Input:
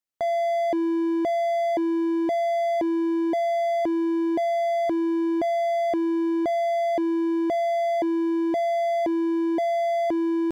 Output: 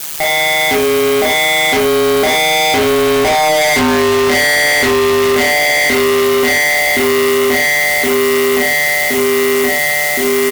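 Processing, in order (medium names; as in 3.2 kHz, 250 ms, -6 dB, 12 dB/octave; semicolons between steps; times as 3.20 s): Doppler pass-by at 3.65 s, 9 m/s, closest 2 m; high-order bell 2.5 kHz +15 dB 1.1 oct; band-stop 1.8 kHz, Q 15; comb 2.5 ms, depth 84%; in parallel at -1.5 dB: compressor with a negative ratio -34 dBFS; on the sum: added noise blue -46 dBFS; feedback echo behind a high-pass 545 ms, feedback 78%, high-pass 3 kHz, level -5.5 dB; ring modulator 75 Hz; hard clipper -30 dBFS, distortion -7 dB; reverberation RT60 0.35 s, pre-delay 28 ms, DRR -1.5 dB; fuzz box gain 47 dB, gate -46 dBFS; trim +2.5 dB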